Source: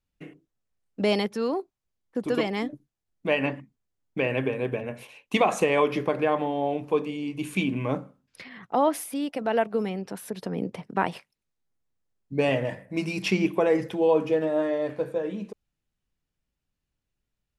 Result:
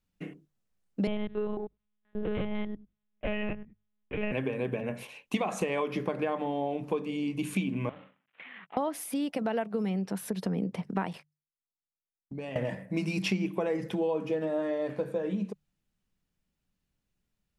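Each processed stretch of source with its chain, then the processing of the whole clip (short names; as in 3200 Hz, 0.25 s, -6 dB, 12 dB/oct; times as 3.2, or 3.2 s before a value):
1.07–4.32 stepped spectrum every 0.1 s + monotone LPC vocoder at 8 kHz 210 Hz
7.89–8.77 CVSD 16 kbps + HPF 1400 Hz 6 dB/oct + compressor 4:1, threshold -43 dBFS
11.13–12.56 gate -53 dBFS, range -26 dB + compressor 4:1, threshold -40 dBFS
whole clip: bell 190 Hz +7.5 dB 0.48 oct; notches 50/100/150 Hz; compressor 4:1, threshold -29 dBFS; gain +1 dB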